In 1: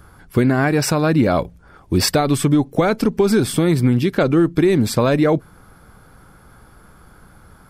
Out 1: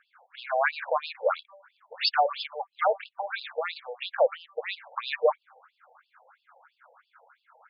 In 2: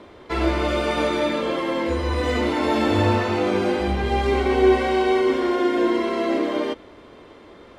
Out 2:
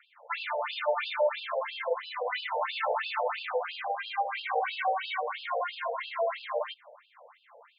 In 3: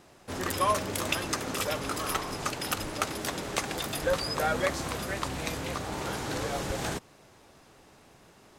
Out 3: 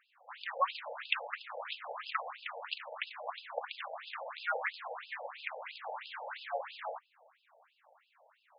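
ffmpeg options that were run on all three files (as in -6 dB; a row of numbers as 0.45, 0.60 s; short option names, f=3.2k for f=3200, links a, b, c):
-af "adynamicsmooth=sensitivity=5:basefreq=2.7k,bandreject=f=195.5:t=h:w=4,bandreject=f=391:t=h:w=4,bandreject=f=586.5:t=h:w=4,bandreject=f=782:t=h:w=4,bandreject=f=977.5:t=h:w=4,bandreject=f=1.173k:t=h:w=4,afftfilt=real='re*between(b*sr/1024,620*pow(3700/620,0.5+0.5*sin(2*PI*3*pts/sr))/1.41,620*pow(3700/620,0.5+0.5*sin(2*PI*3*pts/sr))*1.41)':imag='im*between(b*sr/1024,620*pow(3700/620,0.5+0.5*sin(2*PI*3*pts/sr))/1.41,620*pow(3700/620,0.5+0.5*sin(2*PI*3*pts/sr))*1.41)':win_size=1024:overlap=0.75"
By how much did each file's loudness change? -12.0, -10.5, -8.5 LU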